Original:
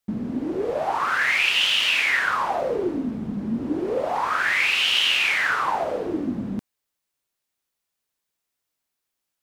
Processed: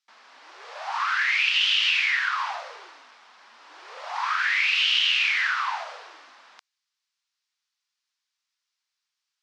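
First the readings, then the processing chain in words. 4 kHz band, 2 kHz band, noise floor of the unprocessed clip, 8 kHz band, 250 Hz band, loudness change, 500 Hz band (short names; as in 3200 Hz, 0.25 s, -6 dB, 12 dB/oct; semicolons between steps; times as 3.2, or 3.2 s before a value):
-1.0 dB, -2.0 dB, -82 dBFS, -6.0 dB, under -40 dB, 0.0 dB, -20.5 dB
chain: HPF 1000 Hz 24 dB/oct; dynamic EQ 2600 Hz, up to +5 dB, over -33 dBFS, Q 0.71; compressor 3:1, threshold -24 dBFS, peak gain reduction 9.5 dB; synth low-pass 5200 Hz, resonance Q 1.8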